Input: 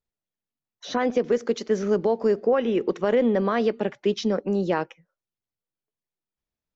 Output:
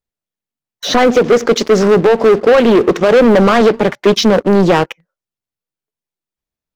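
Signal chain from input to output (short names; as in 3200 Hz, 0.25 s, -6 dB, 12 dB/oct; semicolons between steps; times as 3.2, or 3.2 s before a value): sample leveller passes 3; Doppler distortion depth 0.35 ms; gain +7.5 dB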